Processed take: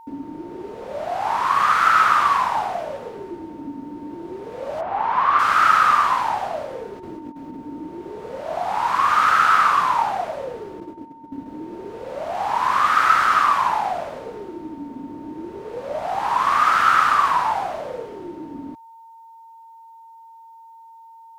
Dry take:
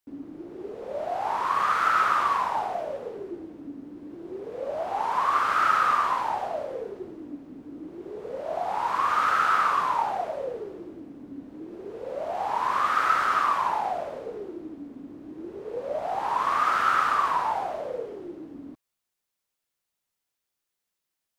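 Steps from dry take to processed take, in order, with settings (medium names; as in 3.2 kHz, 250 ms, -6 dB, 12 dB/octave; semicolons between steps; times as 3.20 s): 4.80–5.38 s: low-pass 1.9 kHz -> 3.4 kHz 12 dB/octave; 10.80–11.46 s: gate -40 dBFS, range -14 dB; dynamic bell 460 Hz, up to -7 dB, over -42 dBFS, Q 0.95; 6.93–7.59 s: compressor with a negative ratio -43 dBFS, ratio -0.5; whistle 910 Hz -50 dBFS; trim +8 dB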